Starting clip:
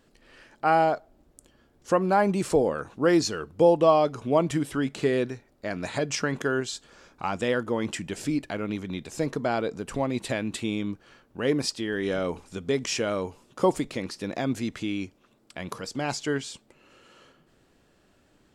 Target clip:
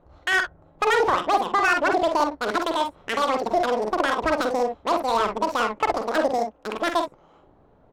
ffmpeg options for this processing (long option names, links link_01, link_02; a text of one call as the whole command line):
ffmpeg -i in.wav -af "equalizer=frequency=980:width=0.33:gain=-4,alimiter=limit=-20.5dB:level=0:latency=1:release=179,asetrate=103194,aresample=44100,aecho=1:1:47|61:0.501|0.316,adynamicsmooth=sensitivity=4.5:basefreq=1100,volume=9dB" out.wav